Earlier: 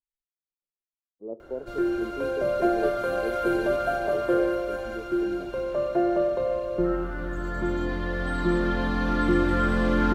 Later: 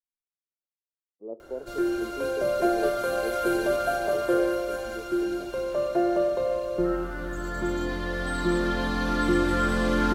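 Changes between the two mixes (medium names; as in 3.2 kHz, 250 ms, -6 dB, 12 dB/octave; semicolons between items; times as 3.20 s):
speech: add bass shelf 160 Hz -11.5 dB; background: add tone controls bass -3 dB, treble +10 dB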